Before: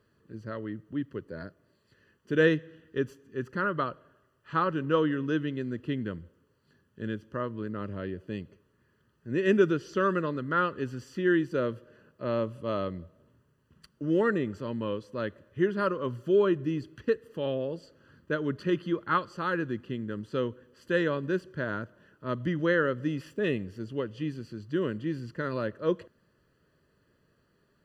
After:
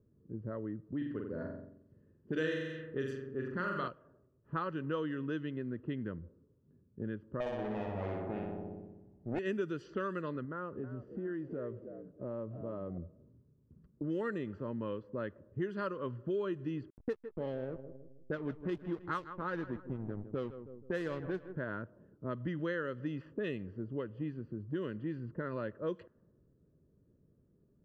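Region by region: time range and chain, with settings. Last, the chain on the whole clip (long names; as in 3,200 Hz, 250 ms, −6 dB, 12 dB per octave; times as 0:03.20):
0:00.97–0:03.88: high-shelf EQ 3,400 Hz +8 dB + flutter between parallel walls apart 7.7 metres, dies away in 0.79 s
0:07.40–0:09.39: lower of the sound and its delayed copy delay 0.38 ms + parametric band 770 Hz +11 dB 0.98 octaves + flutter between parallel walls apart 10.5 metres, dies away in 1.4 s
0:10.45–0:12.98: downward compressor 2 to 1, threshold −40 dBFS + echo with shifted repeats 319 ms, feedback 32%, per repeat +68 Hz, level −11 dB
0:16.90–0:21.56: high-shelf EQ 5,400 Hz −4 dB + slack as between gear wheels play −32 dBFS + repeating echo 159 ms, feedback 45%, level −15 dB
whole clip: low-pass that shuts in the quiet parts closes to 330 Hz, open at −21.5 dBFS; downward compressor 3 to 1, threshold −40 dBFS; level +2.5 dB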